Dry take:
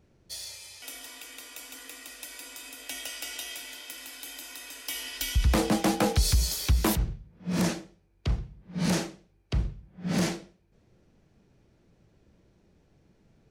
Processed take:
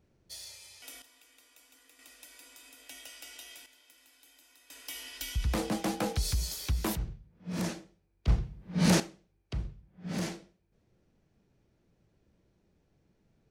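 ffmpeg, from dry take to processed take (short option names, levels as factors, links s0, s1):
-af "asetnsamples=n=441:p=0,asendcmd='1.02 volume volume -17dB;1.99 volume volume -10.5dB;3.66 volume volume -19dB;4.7 volume volume -7dB;8.28 volume volume 2.5dB;9 volume volume -7.5dB',volume=0.501"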